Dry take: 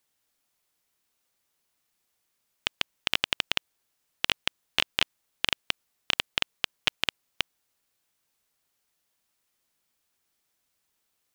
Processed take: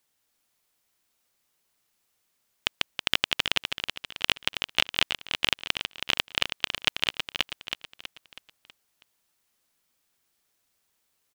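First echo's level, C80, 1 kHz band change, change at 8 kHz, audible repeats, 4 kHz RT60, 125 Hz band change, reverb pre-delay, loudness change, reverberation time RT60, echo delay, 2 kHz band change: -7.0 dB, no reverb, +2.5 dB, +2.5 dB, 5, no reverb, +2.5 dB, no reverb, +2.0 dB, no reverb, 323 ms, +2.5 dB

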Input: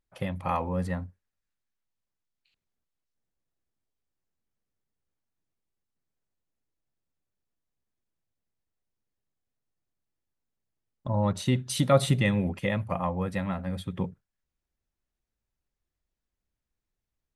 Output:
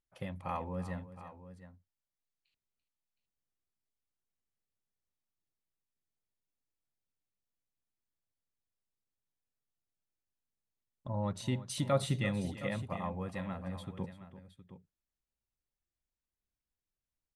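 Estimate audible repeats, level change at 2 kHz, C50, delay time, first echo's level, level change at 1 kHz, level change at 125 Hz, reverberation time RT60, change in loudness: 2, -8.5 dB, no reverb, 339 ms, -15.0 dB, -8.5 dB, -9.0 dB, no reverb, -8.5 dB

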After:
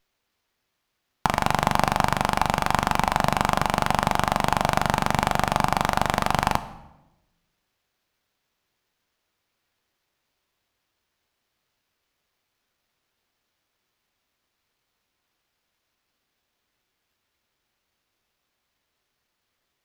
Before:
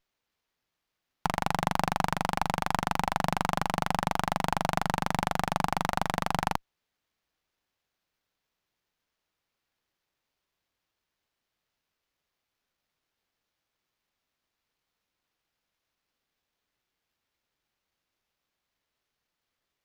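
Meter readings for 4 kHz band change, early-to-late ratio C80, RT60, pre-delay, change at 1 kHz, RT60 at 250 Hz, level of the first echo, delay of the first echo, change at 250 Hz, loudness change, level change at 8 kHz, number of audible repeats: +6.5 dB, 17.0 dB, 0.95 s, 3 ms, +6.5 dB, 1.2 s, no echo, no echo, +5.5 dB, +6.5 dB, +7.0 dB, no echo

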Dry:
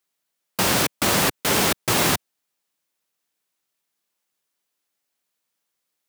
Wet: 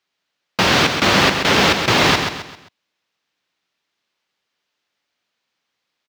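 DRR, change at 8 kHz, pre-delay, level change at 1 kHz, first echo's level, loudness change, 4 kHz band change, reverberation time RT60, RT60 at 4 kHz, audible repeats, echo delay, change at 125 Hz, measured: no reverb, -3.0 dB, no reverb, +7.5 dB, -6.5 dB, +5.5 dB, +8.0 dB, no reverb, no reverb, 4, 132 ms, +6.0 dB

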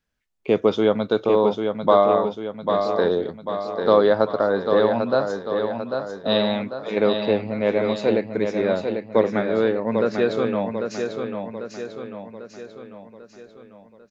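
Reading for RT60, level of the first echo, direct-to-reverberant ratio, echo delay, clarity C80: no reverb, -6.0 dB, no reverb, 795 ms, no reverb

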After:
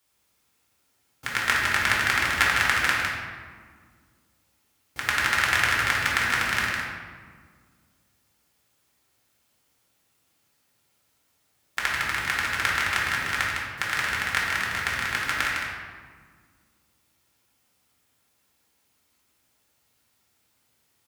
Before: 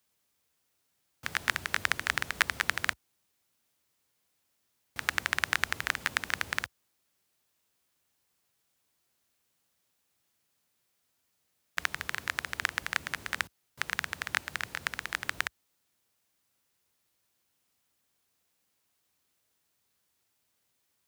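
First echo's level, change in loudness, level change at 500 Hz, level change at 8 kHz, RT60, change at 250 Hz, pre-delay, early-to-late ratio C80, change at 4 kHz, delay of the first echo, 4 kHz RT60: -5.5 dB, +8.0 dB, +9.0 dB, +7.0 dB, 1.7 s, +10.5 dB, 3 ms, 0.5 dB, +7.5 dB, 156 ms, 0.95 s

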